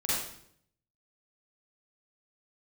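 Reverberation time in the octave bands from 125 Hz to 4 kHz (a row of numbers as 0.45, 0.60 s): 0.95, 0.85, 0.70, 0.60, 0.60, 0.60 s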